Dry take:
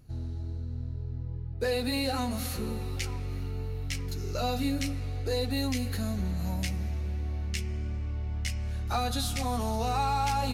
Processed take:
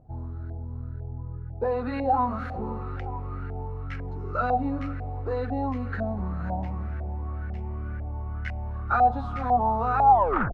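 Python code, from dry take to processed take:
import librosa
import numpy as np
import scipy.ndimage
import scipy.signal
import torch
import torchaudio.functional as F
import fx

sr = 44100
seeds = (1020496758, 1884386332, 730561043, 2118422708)

y = fx.tape_stop_end(x, sr, length_s=0.44)
y = fx.filter_lfo_lowpass(y, sr, shape='saw_up', hz=2.0, low_hz=690.0, high_hz=1600.0, q=6.9)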